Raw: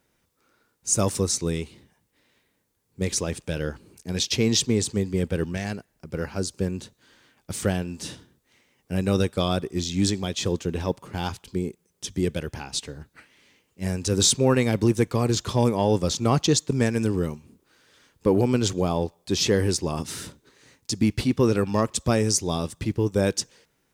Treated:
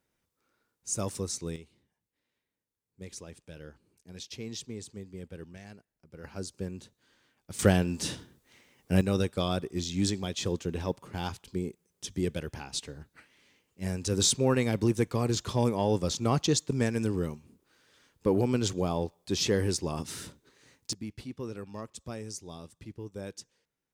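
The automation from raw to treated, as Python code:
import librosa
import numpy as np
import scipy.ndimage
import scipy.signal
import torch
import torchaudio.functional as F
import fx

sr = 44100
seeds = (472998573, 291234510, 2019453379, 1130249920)

y = fx.gain(x, sr, db=fx.steps((0.0, -10.0), (1.56, -18.0), (6.24, -10.0), (7.59, 2.0), (9.01, -5.5), (20.93, -18.0)))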